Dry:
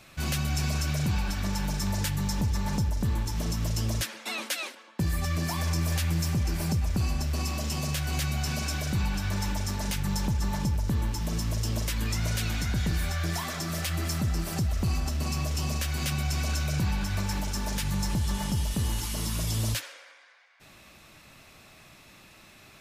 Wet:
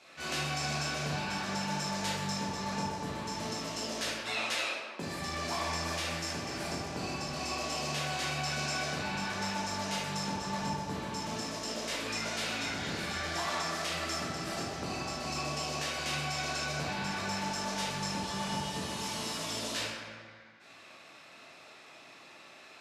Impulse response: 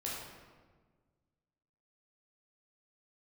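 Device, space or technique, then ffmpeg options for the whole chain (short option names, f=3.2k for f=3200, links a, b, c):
supermarket ceiling speaker: -filter_complex "[0:a]highpass=350,lowpass=6.9k[a];[1:a]atrim=start_sample=2205[b];[a][b]afir=irnorm=-1:irlink=0"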